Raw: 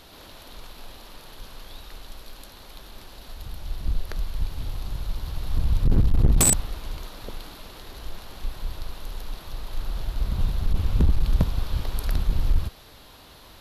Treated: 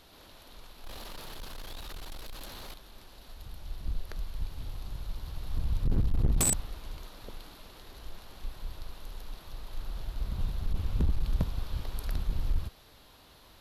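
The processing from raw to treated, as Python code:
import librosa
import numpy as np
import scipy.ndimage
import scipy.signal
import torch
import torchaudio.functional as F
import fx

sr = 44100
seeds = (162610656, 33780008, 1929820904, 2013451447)

y = fx.leveller(x, sr, passes=3, at=(0.84, 2.74))
y = y * 10.0 ** (-8.0 / 20.0)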